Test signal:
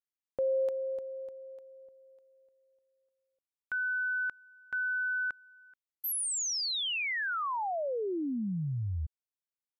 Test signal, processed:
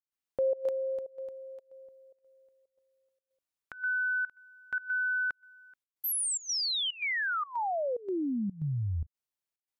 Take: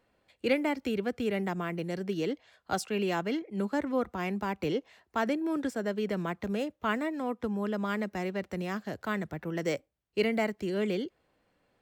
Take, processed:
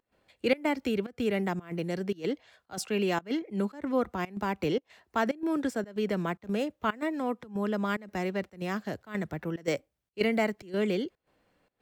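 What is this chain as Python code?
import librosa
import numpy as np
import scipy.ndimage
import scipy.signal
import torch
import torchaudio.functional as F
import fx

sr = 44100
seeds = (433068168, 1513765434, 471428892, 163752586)

y = fx.volume_shaper(x, sr, bpm=113, per_beat=1, depth_db=-21, release_ms=117.0, shape='slow start')
y = y * 10.0 ** (2.0 / 20.0)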